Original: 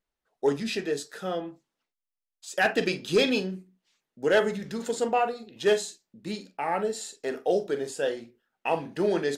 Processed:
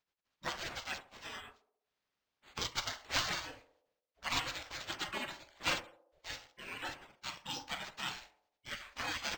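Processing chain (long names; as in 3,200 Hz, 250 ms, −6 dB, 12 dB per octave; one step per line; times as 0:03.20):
gate on every frequency bin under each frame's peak −30 dB weak
feedback echo with a band-pass in the loop 67 ms, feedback 62%, band-pass 520 Hz, level −13 dB
linearly interpolated sample-rate reduction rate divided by 4×
level +9.5 dB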